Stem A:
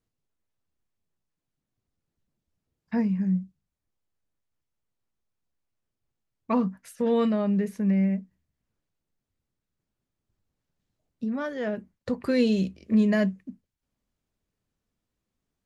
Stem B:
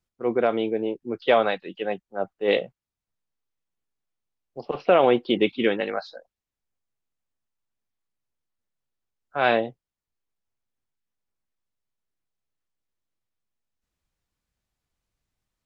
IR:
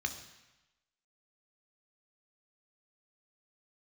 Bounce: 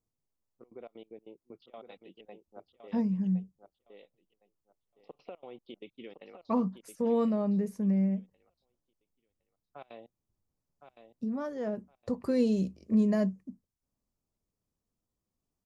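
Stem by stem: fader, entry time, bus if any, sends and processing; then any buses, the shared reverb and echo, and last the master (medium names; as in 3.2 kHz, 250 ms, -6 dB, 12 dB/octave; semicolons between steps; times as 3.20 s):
-4.0 dB, 0.00 s, no send, no echo send, high-order bell 2.4 kHz -9.5 dB
-16.0 dB, 0.40 s, no send, echo send -8 dB, peaking EQ 1.6 kHz -13 dB 0.33 oct; compression 4:1, threshold -28 dBFS, peak gain reduction 13 dB; trance gate ".xx.xx.x.x" 191 bpm -24 dB; auto duck -6 dB, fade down 0.25 s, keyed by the first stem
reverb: none
echo: feedback delay 1063 ms, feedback 21%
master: none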